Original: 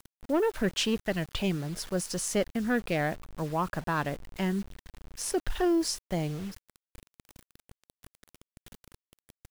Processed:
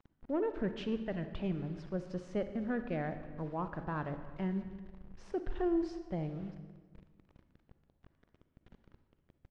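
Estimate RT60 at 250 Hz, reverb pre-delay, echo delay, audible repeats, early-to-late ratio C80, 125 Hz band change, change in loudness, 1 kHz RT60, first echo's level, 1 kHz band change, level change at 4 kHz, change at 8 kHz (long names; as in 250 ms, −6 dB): 1.8 s, 38 ms, 322 ms, 1, 11.0 dB, −5.5 dB, −7.5 dB, 1.3 s, −23.5 dB, −8.5 dB, −19.0 dB, below −30 dB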